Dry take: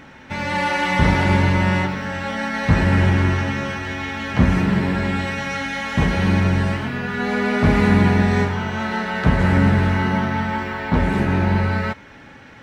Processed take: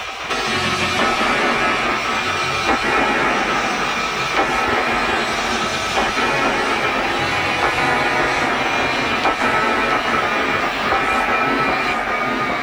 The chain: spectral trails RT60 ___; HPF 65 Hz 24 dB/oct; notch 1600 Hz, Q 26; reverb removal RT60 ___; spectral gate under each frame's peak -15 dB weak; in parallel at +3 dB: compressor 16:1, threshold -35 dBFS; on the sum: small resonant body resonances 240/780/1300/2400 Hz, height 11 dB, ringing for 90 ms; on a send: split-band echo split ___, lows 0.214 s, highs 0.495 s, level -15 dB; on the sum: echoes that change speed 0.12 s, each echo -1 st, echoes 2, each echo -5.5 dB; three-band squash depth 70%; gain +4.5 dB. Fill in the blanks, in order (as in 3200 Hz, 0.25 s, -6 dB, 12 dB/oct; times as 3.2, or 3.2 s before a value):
0.41 s, 0.5 s, 1000 Hz